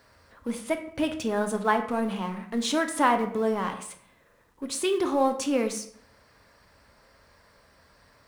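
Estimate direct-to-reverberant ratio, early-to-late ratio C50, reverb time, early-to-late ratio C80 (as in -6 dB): 5.5 dB, 10.5 dB, 0.60 s, 13.5 dB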